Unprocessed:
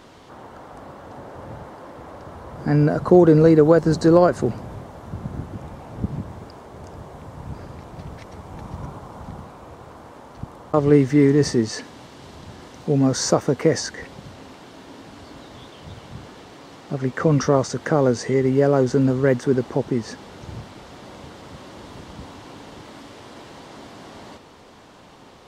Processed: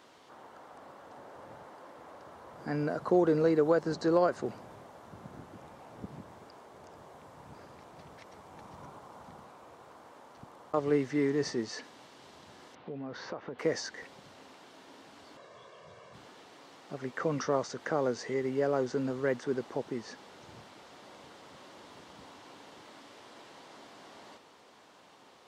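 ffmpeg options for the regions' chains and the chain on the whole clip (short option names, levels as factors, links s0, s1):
-filter_complex "[0:a]asettb=1/sr,asplit=3[s0][s1][s2];[s0]atrim=end=12.754[s3];[s1]atrim=start=12.75:end=13.59,asetpts=PTS-STARTPTS,afade=t=in:d=0.004:c=qsin,afade=t=out:st=0.836:d=0.004:c=qsin,lowpass=f=3300:w=0.5412,lowpass=f=3300:w=1.3066,acompressor=threshold=0.0794:ratio=6:attack=3.2:release=140:knee=1:detection=peak[s4];[s2]atrim=start=13.586[s5];[s3][s4]acrossfade=d=0.004:c1=hsin:c2=qsin[s6];[s6][s5]acrossfade=d=0.004:c1=qsin:c2=hsin,asettb=1/sr,asplit=3[s7][s8][s9];[s7]atrim=end=15.374[s10];[s8]atrim=start=15.37:end=16.14,asetpts=PTS-STARTPTS,afade=t=in:d=0.004:c=qsin,afade=t=out:st=0.766:d=0.004:c=qsin,highpass=120,lowpass=6300,equalizer=f=3600:w=1:g=-8,aecho=1:1:1.8:0.76,atrim=end_sample=33957[s11];[s9]atrim=start=16.136[s12];[s10][s11]acrossfade=d=0.004:c1=hsin:c2=qsin[s13];[s13][s12]acrossfade=d=0.004:c1=qsin:c2=hsin,acrossover=split=6600[s14][s15];[s15]acompressor=threshold=0.00126:ratio=4:attack=1:release=60[s16];[s14][s16]amix=inputs=2:normalize=0,highpass=f=470:p=1,volume=0.376"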